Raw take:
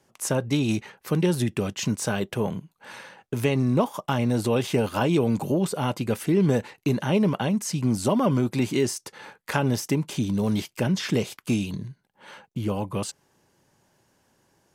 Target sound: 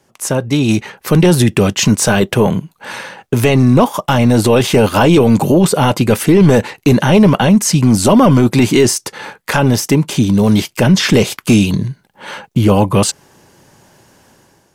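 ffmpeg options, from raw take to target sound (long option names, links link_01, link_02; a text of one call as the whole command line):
ffmpeg -i in.wav -af "dynaudnorm=framelen=530:gausssize=3:maxgain=10dB,apsyclip=11dB,volume=-3dB" out.wav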